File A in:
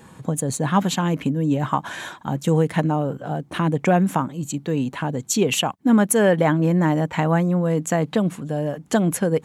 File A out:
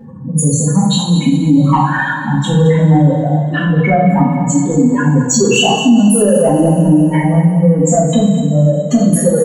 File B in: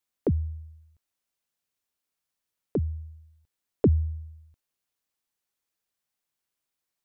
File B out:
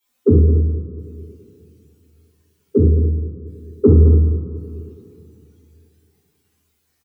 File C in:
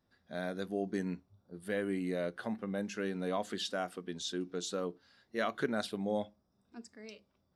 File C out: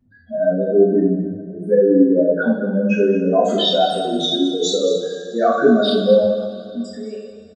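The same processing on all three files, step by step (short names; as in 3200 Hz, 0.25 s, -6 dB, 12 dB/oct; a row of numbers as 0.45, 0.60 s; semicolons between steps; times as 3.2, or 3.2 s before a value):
spectral contrast raised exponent 3.1; notches 60/120 Hz; in parallel at -2 dB: compressor, threshold -29 dBFS; on the sum: soft clip -7.5 dBFS; on a send: echo 0.215 s -11.5 dB; on the sum: two-slope reverb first 0.58 s, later 3 s, from -15 dB, DRR -7.5 dB; maximiser +4.5 dB; normalise peaks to -2 dBFS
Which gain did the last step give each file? -1.0, -1.0, +3.5 dB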